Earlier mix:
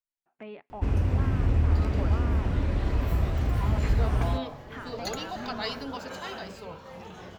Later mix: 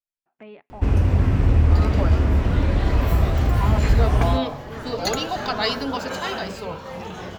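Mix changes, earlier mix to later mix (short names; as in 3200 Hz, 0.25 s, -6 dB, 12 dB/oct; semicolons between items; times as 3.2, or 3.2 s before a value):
first sound +7.0 dB; second sound +10.0 dB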